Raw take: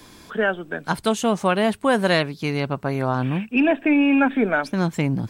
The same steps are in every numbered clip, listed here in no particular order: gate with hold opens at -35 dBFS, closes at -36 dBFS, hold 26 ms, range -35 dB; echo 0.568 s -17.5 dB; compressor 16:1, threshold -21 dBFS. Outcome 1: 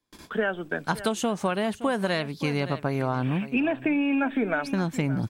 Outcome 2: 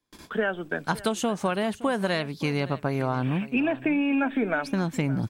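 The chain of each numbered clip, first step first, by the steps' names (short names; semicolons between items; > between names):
gate with hold > echo > compressor; gate with hold > compressor > echo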